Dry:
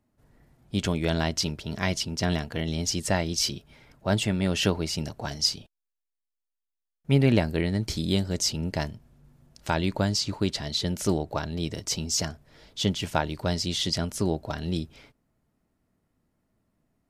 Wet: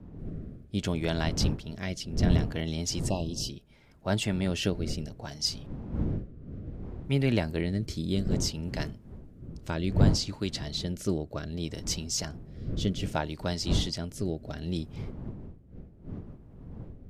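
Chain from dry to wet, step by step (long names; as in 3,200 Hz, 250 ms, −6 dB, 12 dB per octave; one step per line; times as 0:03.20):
wind on the microphone 170 Hz −30 dBFS
rotating-speaker cabinet horn 0.65 Hz
time-frequency box erased 0:03.09–0:03.49, 1,200–2,500 Hz
level −3 dB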